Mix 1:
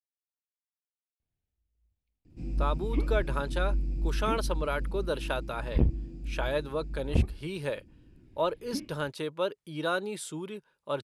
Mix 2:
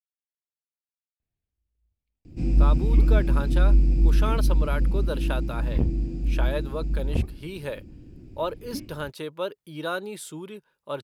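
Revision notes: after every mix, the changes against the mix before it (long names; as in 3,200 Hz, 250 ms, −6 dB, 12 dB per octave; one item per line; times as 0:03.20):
speech: remove low-pass filter 11,000 Hz 24 dB per octave
first sound +11.5 dB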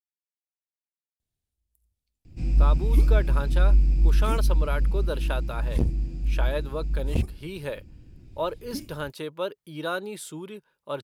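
first sound: add parametric band 320 Hz −9.5 dB 1.9 octaves
second sound: remove low-pass filter 2,900 Hz 24 dB per octave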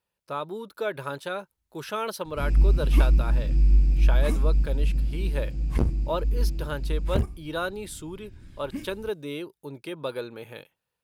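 speech: entry −2.30 s
second sound: add parametric band 1,400 Hz +14 dB 1.3 octaves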